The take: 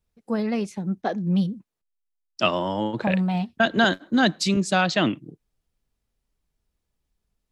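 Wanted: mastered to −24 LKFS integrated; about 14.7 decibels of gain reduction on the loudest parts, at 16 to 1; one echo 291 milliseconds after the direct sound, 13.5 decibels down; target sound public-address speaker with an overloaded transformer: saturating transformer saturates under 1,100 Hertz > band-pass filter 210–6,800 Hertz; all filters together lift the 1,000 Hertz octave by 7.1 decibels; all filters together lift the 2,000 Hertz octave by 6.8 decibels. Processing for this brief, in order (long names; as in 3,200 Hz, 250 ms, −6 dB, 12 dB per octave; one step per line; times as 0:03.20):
parametric band 1,000 Hz +9 dB
parametric band 2,000 Hz +5.5 dB
downward compressor 16 to 1, threshold −24 dBFS
single-tap delay 291 ms −13.5 dB
saturating transformer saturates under 1,100 Hz
band-pass filter 210–6,800 Hz
level +8 dB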